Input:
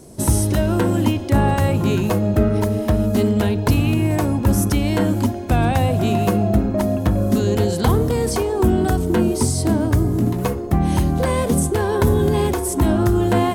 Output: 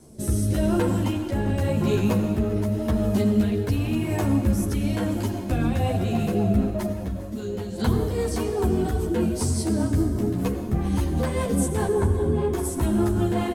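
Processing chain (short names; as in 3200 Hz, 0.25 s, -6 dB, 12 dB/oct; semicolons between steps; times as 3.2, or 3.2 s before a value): 11.87–12.53 LPF 1000 Hz 6 dB/oct; in parallel at 0 dB: limiter -12 dBFS, peak gain reduction 7 dB; on the sum: rotary speaker horn 0.9 Hz, later 5 Hz, at 5.44; 6.92–7.78 resonator 65 Hz, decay 0.45 s, harmonics odd, mix 70%; echo 0.399 s -18 dB; on a send at -8 dB: reverb RT60 1.9 s, pre-delay 77 ms; on the sum: ensemble effect; gain -6.5 dB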